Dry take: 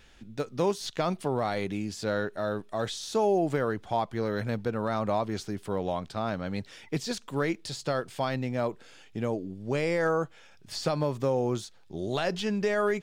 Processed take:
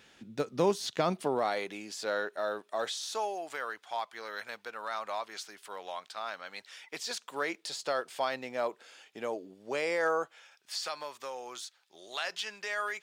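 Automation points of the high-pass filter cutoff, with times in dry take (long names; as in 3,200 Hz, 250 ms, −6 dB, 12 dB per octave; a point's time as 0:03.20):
0:01.04 160 Hz
0:01.65 520 Hz
0:02.83 520 Hz
0:03.37 1,100 Hz
0:06.52 1,100 Hz
0:07.65 520 Hz
0:10.16 520 Hz
0:10.80 1,200 Hz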